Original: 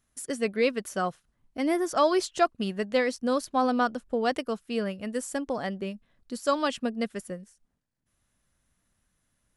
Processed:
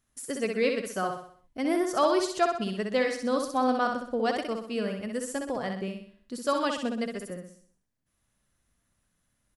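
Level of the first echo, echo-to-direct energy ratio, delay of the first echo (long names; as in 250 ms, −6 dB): −5.0 dB, −4.0 dB, 63 ms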